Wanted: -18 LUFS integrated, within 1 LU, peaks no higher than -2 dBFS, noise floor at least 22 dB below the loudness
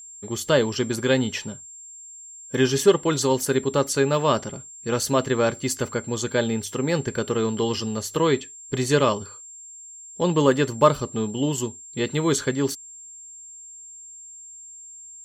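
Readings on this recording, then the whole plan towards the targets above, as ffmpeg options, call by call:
steady tone 7.4 kHz; tone level -40 dBFS; loudness -23.5 LUFS; peak level -3.5 dBFS; loudness target -18.0 LUFS
-> -af "bandreject=f=7400:w=30"
-af "volume=1.88,alimiter=limit=0.794:level=0:latency=1"

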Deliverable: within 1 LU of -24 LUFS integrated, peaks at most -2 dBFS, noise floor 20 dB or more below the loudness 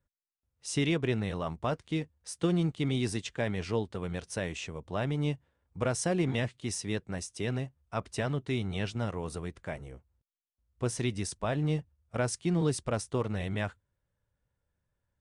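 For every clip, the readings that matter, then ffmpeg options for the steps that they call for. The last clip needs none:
loudness -33.0 LUFS; peak level -17.0 dBFS; loudness target -24.0 LUFS
-> -af "volume=2.82"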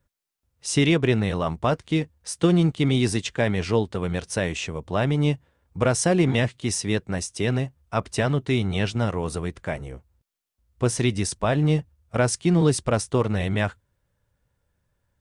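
loudness -24.0 LUFS; peak level -8.0 dBFS; noise floor -76 dBFS

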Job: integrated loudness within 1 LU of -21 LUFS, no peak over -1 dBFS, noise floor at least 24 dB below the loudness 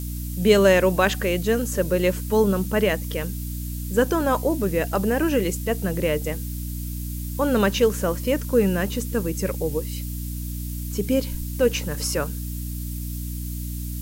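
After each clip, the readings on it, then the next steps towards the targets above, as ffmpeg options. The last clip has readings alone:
hum 60 Hz; highest harmonic 300 Hz; hum level -28 dBFS; noise floor -30 dBFS; noise floor target -48 dBFS; loudness -23.5 LUFS; peak level -5.0 dBFS; loudness target -21.0 LUFS
-> -af "bandreject=f=60:t=h:w=4,bandreject=f=120:t=h:w=4,bandreject=f=180:t=h:w=4,bandreject=f=240:t=h:w=4,bandreject=f=300:t=h:w=4"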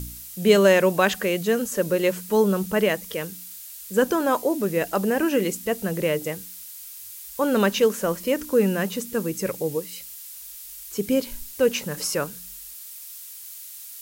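hum not found; noise floor -40 dBFS; noise floor target -47 dBFS
-> -af "afftdn=nr=7:nf=-40"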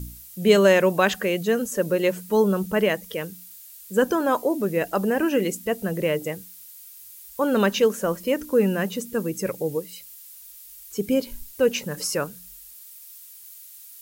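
noise floor -45 dBFS; noise floor target -47 dBFS
-> -af "afftdn=nr=6:nf=-45"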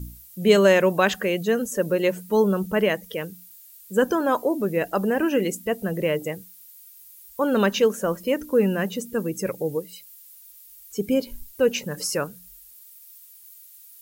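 noise floor -48 dBFS; loudness -23.5 LUFS; peak level -5.5 dBFS; loudness target -21.0 LUFS
-> -af "volume=1.33"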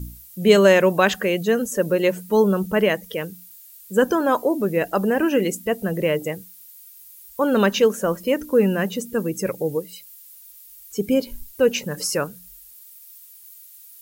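loudness -21.0 LUFS; peak level -3.0 dBFS; noise floor -46 dBFS

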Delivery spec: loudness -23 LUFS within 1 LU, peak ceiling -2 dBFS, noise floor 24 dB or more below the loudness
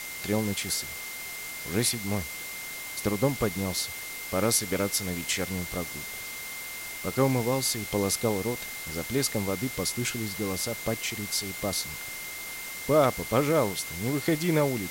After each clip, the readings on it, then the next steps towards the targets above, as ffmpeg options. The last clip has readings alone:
steady tone 2.1 kHz; tone level -39 dBFS; noise floor -38 dBFS; noise floor target -53 dBFS; loudness -28.5 LUFS; peak level -10.5 dBFS; loudness target -23.0 LUFS
-> -af "bandreject=f=2100:w=30"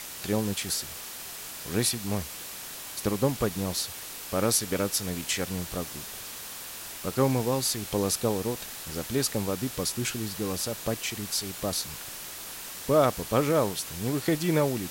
steady tone not found; noise floor -40 dBFS; noise floor target -53 dBFS
-> -af "afftdn=nr=13:nf=-40"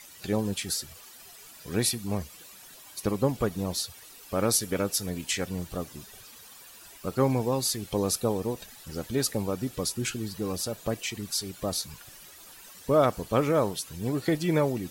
noise floor -50 dBFS; noise floor target -53 dBFS
-> -af "afftdn=nr=6:nf=-50"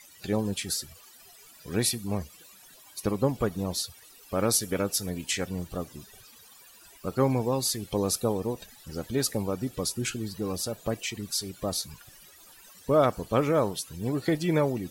noise floor -53 dBFS; loudness -29.0 LUFS; peak level -11.0 dBFS; loudness target -23.0 LUFS
-> -af "volume=2"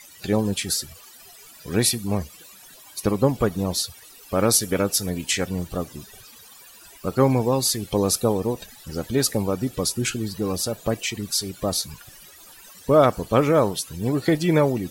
loudness -23.0 LUFS; peak level -5.0 dBFS; noise floor -47 dBFS

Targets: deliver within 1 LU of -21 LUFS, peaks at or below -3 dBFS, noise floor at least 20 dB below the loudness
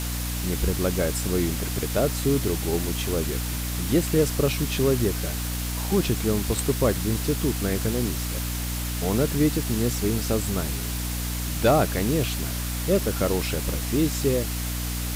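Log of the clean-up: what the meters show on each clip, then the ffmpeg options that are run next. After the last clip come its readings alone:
hum 60 Hz; highest harmonic 300 Hz; hum level -27 dBFS; noise floor -29 dBFS; noise floor target -45 dBFS; loudness -25.0 LUFS; peak level -9.5 dBFS; loudness target -21.0 LUFS
-> -af "bandreject=f=60:t=h:w=4,bandreject=f=120:t=h:w=4,bandreject=f=180:t=h:w=4,bandreject=f=240:t=h:w=4,bandreject=f=300:t=h:w=4"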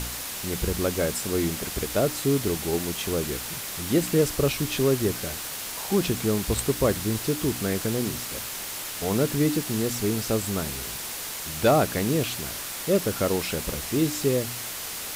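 hum not found; noise floor -34 dBFS; noise floor target -46 dBFS
-> -af "afftdn=nr=12:nf=-34"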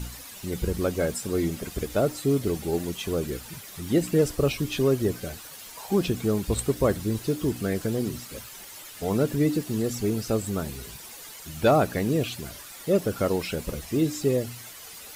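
noise floor -43 dBFS; noise floor target -47 dBFS
-> -af "afftdn=nr=6:nf=-43"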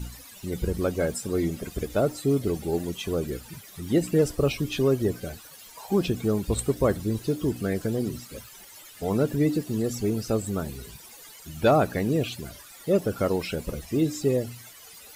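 noise floor -48 dBFS; loudness -26.5 LUFS; peak level -11.0 dBFS; loudness target -21.0 LUFS
-> -af "volume=1.88"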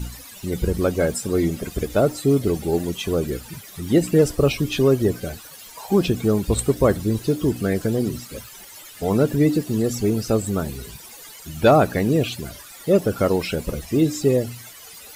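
loudness -21.0 LUFS; peak level -5.5 dBFS; noise floor -42 dBFS

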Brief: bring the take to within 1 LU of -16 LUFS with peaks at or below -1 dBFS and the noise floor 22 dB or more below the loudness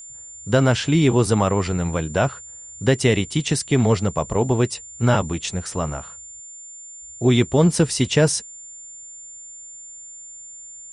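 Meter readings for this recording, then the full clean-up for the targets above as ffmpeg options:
steady tone 7.2 kHz; tone level -37 dBFS; loudness -20.5 LUFS; peak level -4.5 dBFS; loudness target -16.0 LUFS
-> -af "bandreject=f=7200:w=30"
-af "volume=1.68,alimiter=limit=0.891:level=0:latency=1"

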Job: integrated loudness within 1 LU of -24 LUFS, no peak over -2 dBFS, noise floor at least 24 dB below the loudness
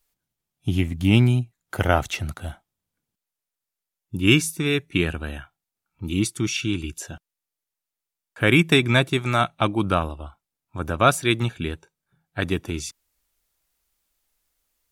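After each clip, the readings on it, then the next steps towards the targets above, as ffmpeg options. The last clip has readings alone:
loudness -22.5 LUFS; peak level -2.5 dBFS; loudness target -24.0 LUFS
-> -af "volume=0.841"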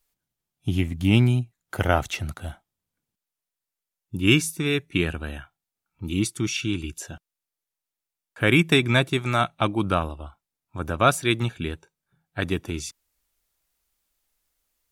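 loudness -24.0 LUFS; peak level -4.0 dBFS; noise floor -88 dBFS

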